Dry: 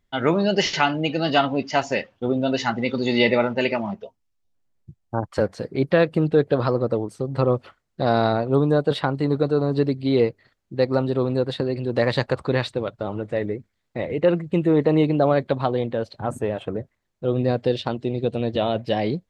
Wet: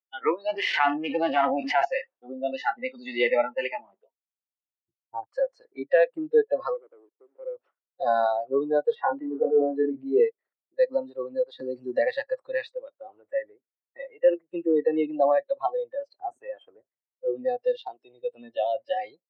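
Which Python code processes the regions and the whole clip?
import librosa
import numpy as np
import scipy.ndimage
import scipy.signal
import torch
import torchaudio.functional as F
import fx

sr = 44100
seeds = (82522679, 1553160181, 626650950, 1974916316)

y = fx.chain(x, sr, fx.halfwave_gain(db=-12.0),
    fx.lowpass(hz=2600.0, slope=6),
    fx.env_flatten(amount_pct=100), at=(0.48, 1.85))
y = fx.chain(y, sr, fx.low_shelf(hz=95.0, db=6.5),
    fx.notch(hz=4000.0, q=14.0), at=(3.24, 5.34))
y = fx.chain(y, sr, fx.ladder_bandpass(hz=420.0, resonance_pct=45),
    fx.leveller(passes=2), at=(6.74, 7.56))
y = fx.chain(y, sr, fx.lowpass(hz=2000.0, slope=12),
    fx.doubler(ms=25.0, db=-6),
    fx.sustainer(db_per_s=31.0), at=(8.95, 10.2))
y = fx.chain(y, sr, fx.law_mismatch(coded='mu'),
    fx.low_shelf(hz=250.0, db=8.0),
    fx.band_squash(depth_pct=40), at=(11.59, 12.01))
y = scipy.signal.sosfilt(scipy.signal.butter(2, 1900.0, 'lowpass', fs=sr, output='sos'), y)
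y = fx.noise_reduce_blind(y, sr, reduce_db=25)
y = scipy.signal.sosfilt(scipy.signal.butter(4, 360.0, 'highpass', fs=sr, output='sos'), y)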